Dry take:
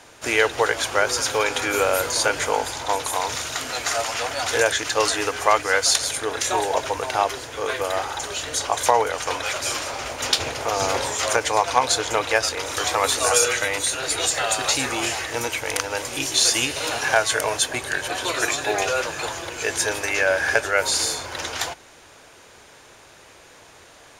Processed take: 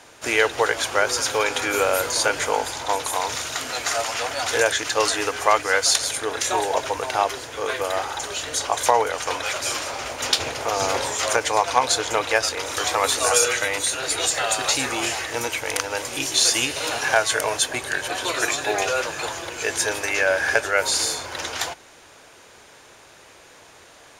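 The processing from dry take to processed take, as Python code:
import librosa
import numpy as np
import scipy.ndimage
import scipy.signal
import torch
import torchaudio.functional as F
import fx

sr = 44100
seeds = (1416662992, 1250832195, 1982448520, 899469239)

y = fx.low_shelf(x, sr, hz=130.0, db=-4.0)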